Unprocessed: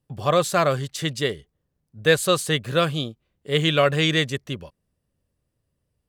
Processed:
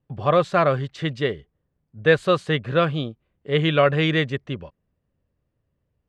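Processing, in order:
low-pass filter 2,500 Hz 12 dB per octave
level +1.5 dB

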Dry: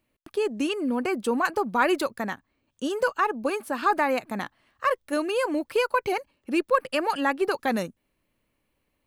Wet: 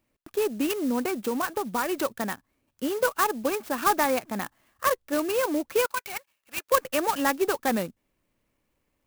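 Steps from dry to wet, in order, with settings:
0:01.05–0:01.98: downward compressor 6 to 1, threshold −24 dBFS, peak gain reduction 8 dB
0:05.86–0:06.72: high-pass filter 1,400 Hz 12 dB per octave
converter with an unsteady clock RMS 0.051 ms

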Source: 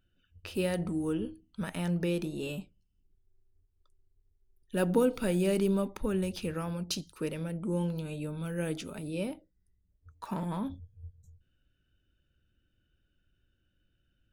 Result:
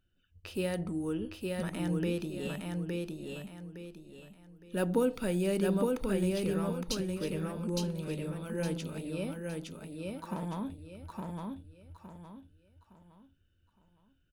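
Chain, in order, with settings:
repeating echo 863 ms, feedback 32%, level −3 dB
level −2.5 dB

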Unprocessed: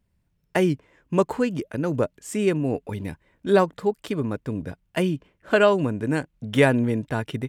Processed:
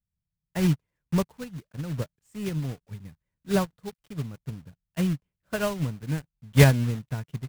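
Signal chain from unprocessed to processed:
one scale factor per block 3 bits
low shelf with overshoot 220 Hz +9.5 dB, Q 1.5
expander for the loud parts 2.5 to 1, over −26 dBFS
level −1 dB

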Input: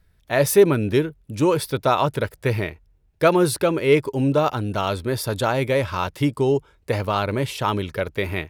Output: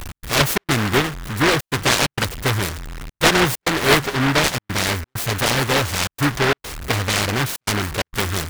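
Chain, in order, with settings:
converter with a step at zero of −25 dBFS
gate pattern "x.xxx.xxxxxxx" 131 BPM −60 dB
short delay modulated by noise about 1,300 Hz, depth 0.4 ms

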